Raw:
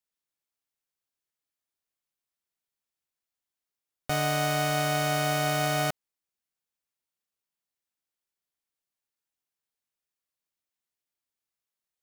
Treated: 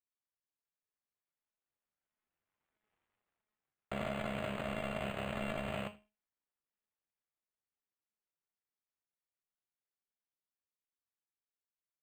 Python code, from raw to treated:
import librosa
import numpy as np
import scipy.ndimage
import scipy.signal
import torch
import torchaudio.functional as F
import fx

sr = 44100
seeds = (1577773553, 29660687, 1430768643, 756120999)

p1 = fx.cycle_switch(x, sr, every=2, mode='muted')
p2 = fx.doppler_pass(p1, sr, speed_mps=29, closest_m=7.6, pass_at_s=2.9)
p3 = fx.comb_fb(p2, sr, f0_hz=210.0, decay_s=0.3, harmonics='all', damping=0.0, mix_pct=80)
p4 = fx.vibrato(p3, sr, rate_hz=1.5, depth_cents=18.0)
p5 = p4 + fx.echo_single(p4, sr, ms=81, db=-23.0, dry=0)
p6 = fx.rider(p5, sr, range_db=10, speed_s=0.5)
p7 = fx.peak_eq(p6, sr, hz=9200.0, db=10.5, octaves=0.75)
p8 = np.interp(np.arange(len(p7)), np.arange(len(p7))[::8], p7[::8])
y = p8 * 10.0 ** (17.0 / 20.0)